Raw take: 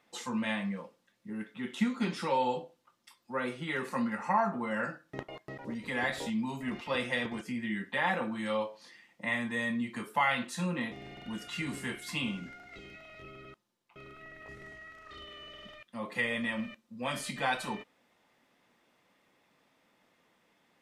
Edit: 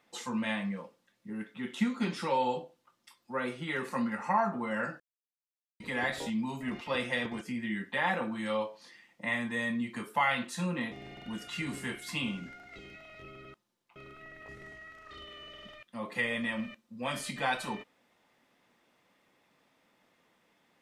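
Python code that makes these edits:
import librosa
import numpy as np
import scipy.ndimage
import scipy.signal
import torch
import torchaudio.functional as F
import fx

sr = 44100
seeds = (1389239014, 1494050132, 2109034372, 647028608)

y = fx.edit(x, sr, fx.silence(start_s=5.0, length_s=0.8), tone=tone)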